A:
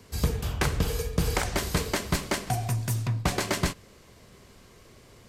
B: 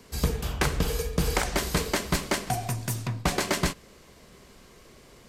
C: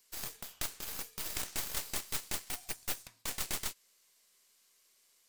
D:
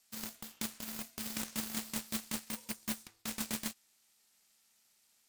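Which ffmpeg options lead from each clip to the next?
-af "equalizer=f=100:t=o:w=0.4:g=-12,volume=1.19"
-af "aderivative,aeval=exprs='0.2*(cos(1*acos(clip(val(0)/0.2,-1,1)))-cos(1*PI/2))+0.0794*(cos(8*acos(clip(val(0)/0.2,-1,1)))-cos(8*PI/2))':c=same,volume=0.398"
-af "aeval=exprs='val(0)*sin(2*PI*220*n/s)':c=same,volume=1.12"

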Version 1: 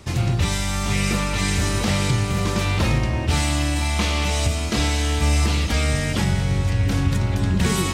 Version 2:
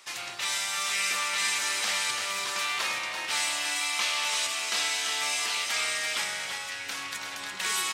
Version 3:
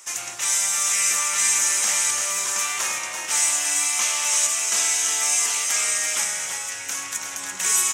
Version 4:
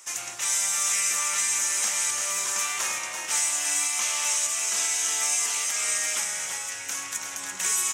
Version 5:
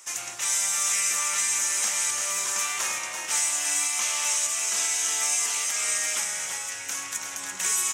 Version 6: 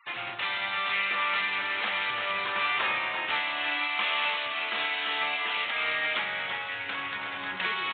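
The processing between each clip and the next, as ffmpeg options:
-af "highpass=1200,aecho=1:1:338:0.501,volume=0.841"
-af "highshelf=f=5300:t=q:w=3:g=7,flanger=delay=8.5:depth=2.7:regen=82:speed=0.45:shape=sinusoidal,volume=2.24"
-af "alimiter=limit=0.266:level=0:latency=1:release=207,volume=0.708"
-af anull
-af "afftfilt=real='re*gte(hypot(re,im),0.00316)':imag='im*gte(hypot(re,im),0.00316)':win_size=1024:overlap=0.75,aresample=8000,aresample=44100,volume=1.78"

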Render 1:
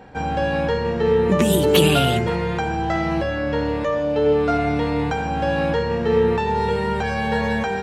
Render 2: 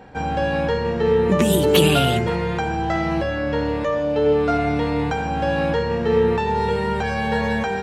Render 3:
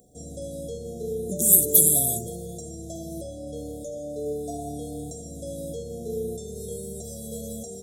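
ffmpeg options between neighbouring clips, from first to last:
-af anull
-af "aexciter=amount=13.4:drive=9.6:freq=6900,afftfilt=real='re*(1-between(b*sr/4096,750,3300))':imag='im*(1-between(b*sr/4096,750,3300))':win_size=4096:overlap=0.75,volume=0.224"

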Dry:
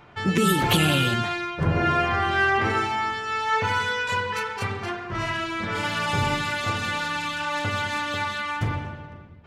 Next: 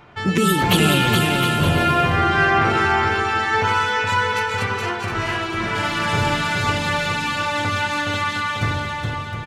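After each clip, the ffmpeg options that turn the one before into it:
-af "aecho=1:1:420|714|919.8|1064|1165:0.631|0.398|0.251|0.158|0.1,volume=1.41"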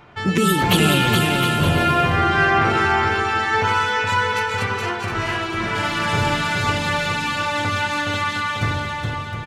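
-af anull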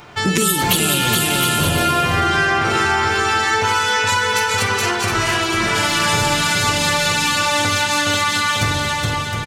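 -filter_complex "[0:a]bass=f=250:g=-2,treble=f=4000:g=13,acompressor=threshold=0.1:ratio=6,asplit=2[s0][s1];[s1]adelay=48,volume=0.224[s2];[s0][s2]amix=inputs=2:normalize=0,volume=2"

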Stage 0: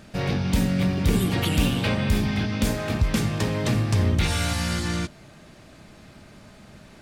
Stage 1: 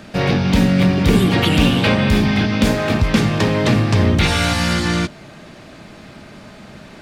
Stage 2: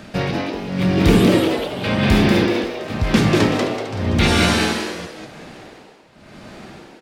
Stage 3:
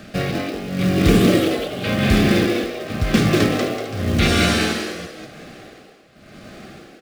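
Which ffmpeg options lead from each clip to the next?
-filter_complex "[0:a]acrossover=split=140|5300[s0][s1][s2];[s1]acontrast=67[s3];[s2]alimiter=level_in=1.68:limit=0.0631:level=0:latency=1:release=259,volume=0.596[s4];[s0][s3][s4]amix=inputs=3:normalize=0,volume=1.5"
-filter_complex "[0:a]tremolo=f=0.92:d=0.94,asplit=6[s0][s1][s2][s3][s4][s5];[s1]adelay=190,afreqshift=140,volume=0.708[s6];[s2]adelay=380,afreqshift=280,volume=0.263[s7];[s3]adelay=570,afreqshift=420,volume=0.0966[s8];[s4]adelay=760,afreqshift=560,volume=0.0359[s9];[s5]adelay=950,afreqshift=700,volume=0.0133[s10];[s0][s6][s7][s8][s9][s10]amix=inputs=6:normalize=0"
-filter_complex "[0:a]acrossover=split=970[s0][s1];[s0]acrusher=bits=4:mode=log:mix=0:aa=0.000001[s2];[s2][s1]amix=inputs=2:normalize=0,asuperstop=centerf=930:order=4:qfactor=4,volume=0.891"

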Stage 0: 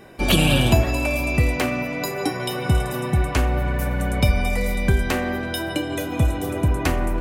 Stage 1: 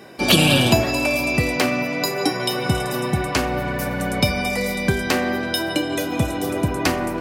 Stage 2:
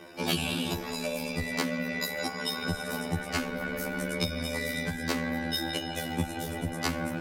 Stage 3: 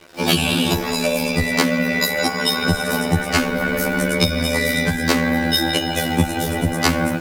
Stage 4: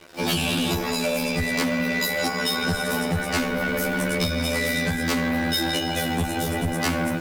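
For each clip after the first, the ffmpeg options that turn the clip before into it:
-af "highpass=140,equalizer=f=4900:t=o:w=0.6:g=7,volume=1.41"
-af "tremolo=f=75:d=0.71,acompressor=threshold=0.0708:ratio=6,afftfilt=real='re*2*eq(mod(b,4),0)':imag='im*2*eq(mod(b,4),0)':win_size=2048:overlap=0.75"
-af "dynaudnorm=f=110:g=3:m=3.55,acrusher=bits=6:mix=0:aa=0.5,volume=1.26"
-af "asoftclip=type=tanh:threshold=0.141,volume=0.841"

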